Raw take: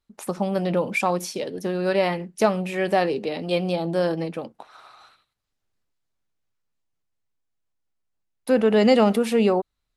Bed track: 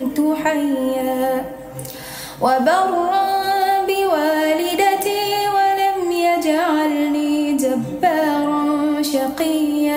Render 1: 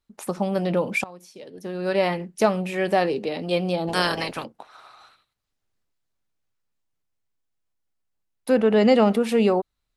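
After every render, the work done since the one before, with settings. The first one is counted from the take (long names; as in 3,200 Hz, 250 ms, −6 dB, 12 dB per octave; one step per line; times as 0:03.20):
0:01.04–0:02.01: fade in quadratic, from −20 dB
0:03.87–0:04.43: ceiling on every frequency bin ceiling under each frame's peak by 25 dB
0:08.57–0:09.29: high-shelf EQ 4,900 Hz −7 dB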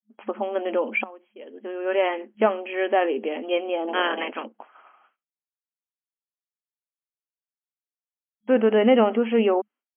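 downward expander −43 dBFS
brick-wall band-pass 210–3,300 Hz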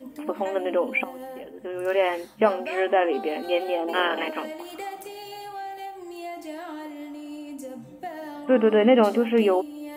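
mix in bed track −19.5 dB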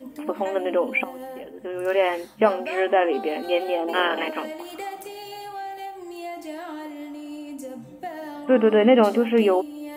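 level +1.5 dB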